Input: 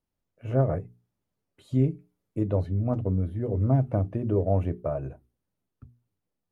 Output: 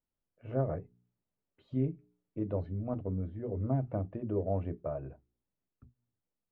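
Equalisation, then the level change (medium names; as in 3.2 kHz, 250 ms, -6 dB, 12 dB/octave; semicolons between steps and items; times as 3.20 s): distance through air 270 m; peaking EQ 110 Hz -4.5 dB 0.76 oct; hum notches 60/120/180/240/300/360/420 Hz; -6.0 dB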